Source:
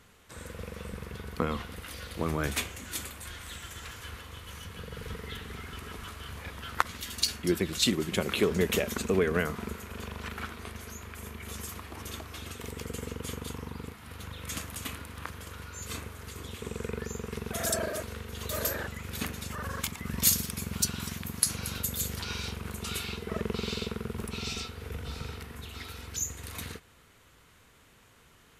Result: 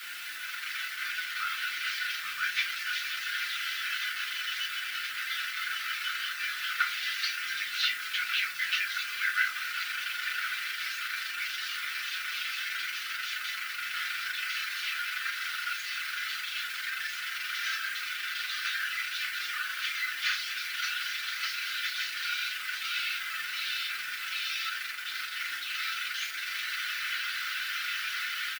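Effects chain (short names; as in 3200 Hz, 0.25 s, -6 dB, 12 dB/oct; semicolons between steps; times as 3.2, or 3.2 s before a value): delta modulation 32 kbps, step -27.5 dBFS; LPF 2600 Hz 12 dB/oct; reverb removal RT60 0.51 s; elliptic high-pass 1400 Hz, stop band 40 dB; AGC gain up to 8 dB; bit-crush 8-bit; tilt +2.5 dB/oct; doubler 12 ms -13 dB; FDN reverb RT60 0.38 s, low-frequency decay 1.2×, high-frequency decay 0.7×, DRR -4.5 dB; gain -7.5 dB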